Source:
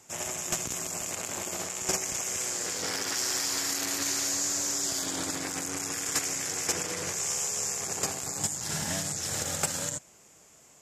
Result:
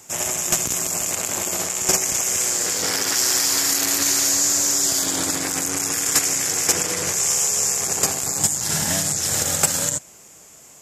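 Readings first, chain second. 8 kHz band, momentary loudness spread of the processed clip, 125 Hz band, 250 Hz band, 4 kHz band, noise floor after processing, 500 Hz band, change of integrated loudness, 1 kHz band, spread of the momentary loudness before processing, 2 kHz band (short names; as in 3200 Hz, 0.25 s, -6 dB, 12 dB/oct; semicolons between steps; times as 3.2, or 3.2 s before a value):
+11.0 dB, 5 LU, +8.0 dB, +8.0 dB, +9.5 dB, -47 dBFS, +8.0 dB, +10.5 dB, +8.0 dB, 5 LU, +8.5 dB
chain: high shelf 10000 Hz +10 dB; gain +8 dB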